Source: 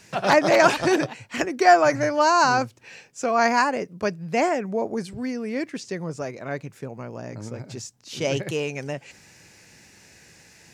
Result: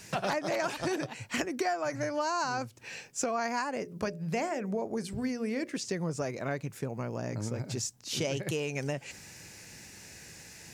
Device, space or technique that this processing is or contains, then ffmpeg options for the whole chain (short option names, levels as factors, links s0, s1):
ASMR close-microphone chain: -filter_complex "[0:a]lowshelf=f=150:g=4,acompressor=threshold=0.0355:ratio=8,highshelf=f=7200:g=8,asettb=1/sr,asplit=3[s0][s1][s2];[s0]atrim=end=3.814[s3];[s1]atrim=start=3.81:end=5.78,asetpts=PTS-STARTPTS,afade=t=in:d=0.004:c=qsin,afade=t=out:st=1.966:d=0.004:c=qsin,bandreject=f=60:t=h:w=6,bandreject=f=120:t=h:w=6,bandreject=f=180:t=h:w=6,bandreject=f=240:t=h:w=6,bandreject=f=300:t=h:w=6,bandreject=f=360:t=h:w=6,bandreject=f=420:t=h:w=6,bandreject=f=480:t=h:w=6,bandreject=f=540:t=h:w=6,bandreject=f=600:t=h:w=6[s4];[s2]atrim=start=5.776[s5];[s3][s4]acrossfade=d=0.004:c1=hsin:c2=qsin[s6];[s6][s5]acrossfade=d=0.004:c1=qsin:c2=hsin"